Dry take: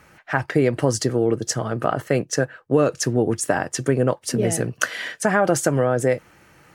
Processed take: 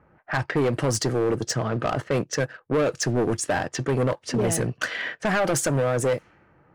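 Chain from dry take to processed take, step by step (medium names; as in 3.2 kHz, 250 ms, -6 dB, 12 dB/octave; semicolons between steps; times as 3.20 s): waveshaping leveller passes 1; level-controlled noise filter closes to 1 kHz, open at -13 dBFS; saturation -15.5 dBFS, distortion -10 dB; trim -2 dB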